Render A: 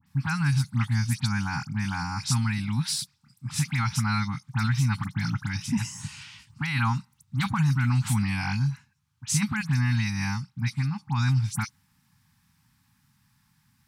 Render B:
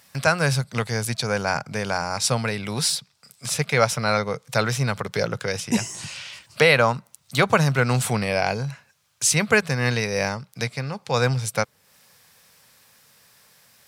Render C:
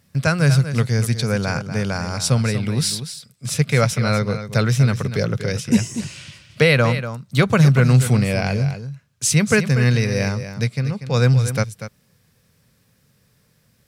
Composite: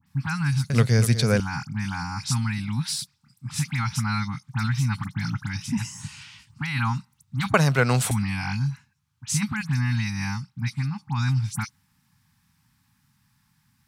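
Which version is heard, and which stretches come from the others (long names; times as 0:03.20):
A
0:00.70–0:01.40: punch in from C
0:07.54–0:08.11: punch in from B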